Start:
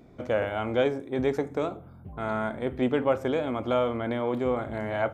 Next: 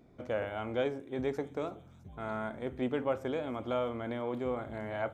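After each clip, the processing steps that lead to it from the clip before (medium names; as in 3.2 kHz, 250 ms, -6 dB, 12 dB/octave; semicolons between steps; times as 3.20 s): feedback echo behind a high-pass 330 ms, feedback 71%, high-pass 5.3 kHz, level -12 dB; trim -7.5 dB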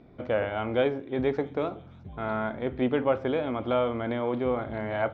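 low-pass 4.2 kHz 24 dB/octave; trim +7 dB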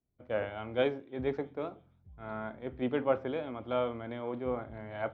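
three bands expanded up and down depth 100%; trim -7 dB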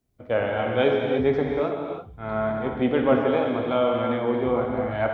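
in parallel at 0 dB: peak limiter -25 dBFS, peak gain reduction 10.5 dB; on the sum: gated-style reverb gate 360 ms flat, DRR 0.5 dB; trim +4 dB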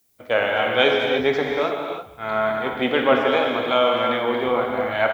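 tilt EQ +4 dB/octave; speakerphone echo 210 ms, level -18 dB; trim +6 dB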